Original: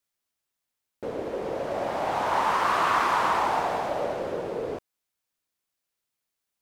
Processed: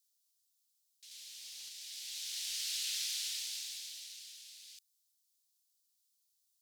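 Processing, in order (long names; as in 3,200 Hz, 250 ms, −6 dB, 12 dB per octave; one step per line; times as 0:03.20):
inverse Chebyshev high-pass filter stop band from 1,200 Hz, stop band 60 dB
0:01.11–0:01.69: leveller curve on the samples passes 1
level +6.5 dB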